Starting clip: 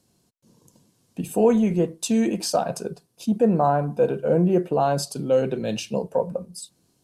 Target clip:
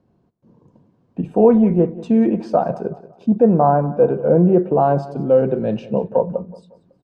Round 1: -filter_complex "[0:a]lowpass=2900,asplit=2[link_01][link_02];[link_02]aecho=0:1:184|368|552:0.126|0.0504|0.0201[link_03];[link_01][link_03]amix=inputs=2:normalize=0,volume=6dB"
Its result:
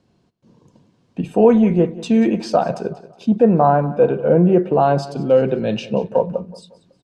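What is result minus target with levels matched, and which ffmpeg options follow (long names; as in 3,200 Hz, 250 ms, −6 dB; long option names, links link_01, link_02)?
4,000 Hz band +13.5 dB
-filter_complex "[0:a]lowpass=1200,asplit=2[link_01][link_02];[link_02]aecho=0:1:184|368|552:0.126|0.0504|0.0201[link_03];[link_01][link_03]amix=inputs=2:normalize=0,volume=6dB"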